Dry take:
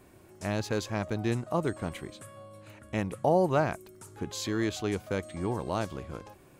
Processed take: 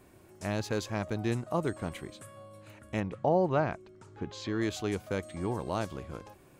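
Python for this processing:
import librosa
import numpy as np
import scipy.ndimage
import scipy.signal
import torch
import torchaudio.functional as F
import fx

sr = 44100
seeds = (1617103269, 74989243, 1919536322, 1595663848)

y = fx.air_absorb(x, sr, metres=140.0, at=(2.99, 4.6), fade=0.02)
y = F.gain(torch.from_numpy(y), -1.5).numpy()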